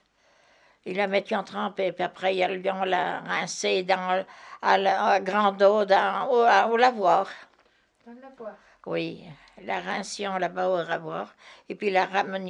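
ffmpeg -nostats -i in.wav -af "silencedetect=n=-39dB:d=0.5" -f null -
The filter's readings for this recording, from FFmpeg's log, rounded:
silence_start: 0.00
silence_end: 0.86 | silence_duration: 0.86
silence_start: 7.43
silence_end: 8.08 | silence_duration: 0.64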